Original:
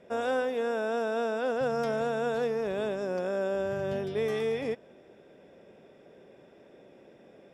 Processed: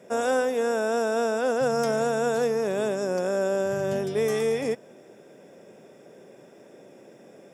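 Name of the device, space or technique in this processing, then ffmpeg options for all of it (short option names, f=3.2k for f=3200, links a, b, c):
budget condenser microphone: -af "highpass=f=110:w=0.5412,highpass=f=110:w=1.3066,highshelf=f=5.1k:t=q:w=1.5:g=9,volume=5dB"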